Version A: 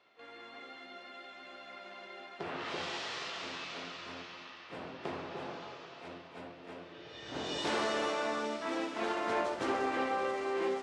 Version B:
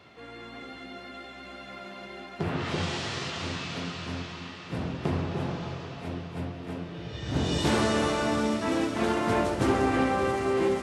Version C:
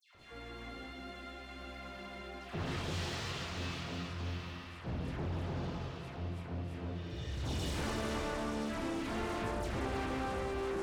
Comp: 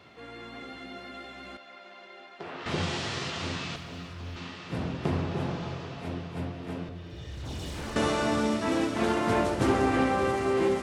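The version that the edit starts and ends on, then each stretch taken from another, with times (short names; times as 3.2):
B
1.57–2.66 from A
3.76–4.36 from C
6.89–7.96 from C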